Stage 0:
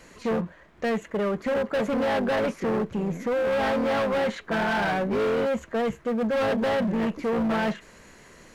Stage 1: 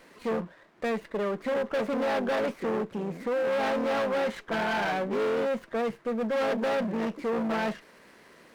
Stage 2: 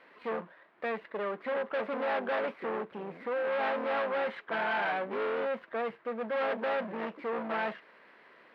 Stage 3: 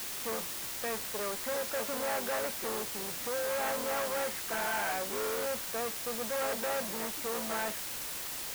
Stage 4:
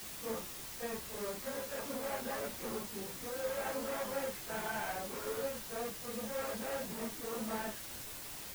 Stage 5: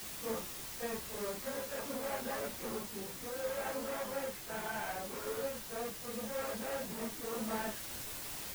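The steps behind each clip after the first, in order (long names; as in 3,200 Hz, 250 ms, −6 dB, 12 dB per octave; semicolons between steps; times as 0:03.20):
high-pass filter 210 Hz 12 dB per octave; windowed peak hold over 5 samples; level −2.5 dB
high-pass filter 1,100 Hz 6 dB per octave; high-frequency loss of the air 430 metres; level +4 dB
bit-depth reduction 6 bits, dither triangular; level −3 dB
random phases in long frames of 100 ms; low-shelf EQ 350 Hz +9.5 dB; level −7.5 dB
speech leveller 2 s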